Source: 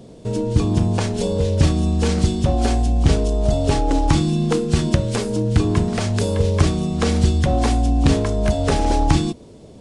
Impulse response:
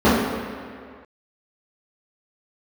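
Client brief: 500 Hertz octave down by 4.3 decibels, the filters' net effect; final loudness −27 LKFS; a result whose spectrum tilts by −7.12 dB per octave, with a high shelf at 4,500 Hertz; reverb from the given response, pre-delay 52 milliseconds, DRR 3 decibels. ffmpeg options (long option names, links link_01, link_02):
-filter_complex "[0:a]equalizer=frequency=500:width_type=o:gain=-5.5,highshelf=frequency=4500:gain=5,asplit=2[link_01][link_02];[1:a]atrim=start_sample=2205,adelay=52[link_03];[link_02][link_03]afir=irnorm=-1:irlink=0,volume=-29.5dB[link_04];[link_01][link_04]amix=inputs=2:normalize=0,volume=-11dB"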